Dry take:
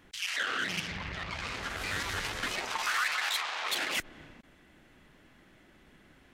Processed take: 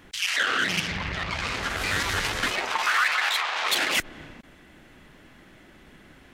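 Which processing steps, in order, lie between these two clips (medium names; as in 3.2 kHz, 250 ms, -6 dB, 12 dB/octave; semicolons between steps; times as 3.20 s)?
2.50–3.56 s: tone controls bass -6 dB, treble -6 dB; trim +8 dB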